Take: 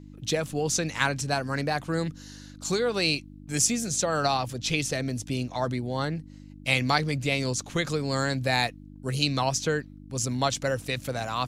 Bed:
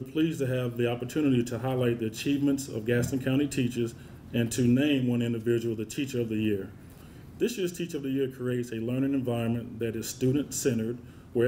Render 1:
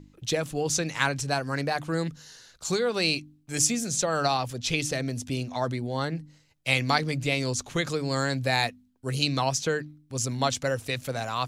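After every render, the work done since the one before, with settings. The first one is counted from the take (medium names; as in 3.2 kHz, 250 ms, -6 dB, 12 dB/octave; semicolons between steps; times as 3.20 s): de-hum 50 Hz, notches 6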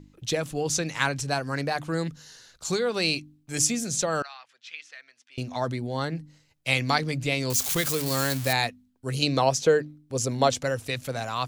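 4.22–5.38 s: ladder band-pass 2.1 kHz, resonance 30%; 7.50–8.53 s: zero-crossing glitches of -19 dBFS; 9.22–10.63 s: peaking EQ 500 Hz +9 dB 1.2 oct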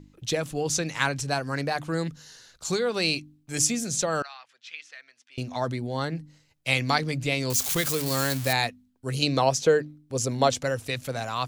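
no audible change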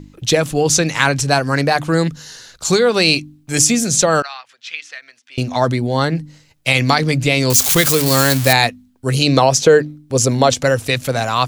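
loudness maximiser +12.5 dB; endings held to a fixed fall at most 400 dB/s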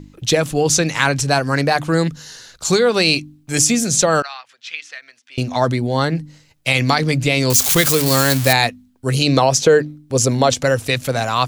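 trim -1 dB; peak limiter -3 dBFS, peak gain reduction 1 dB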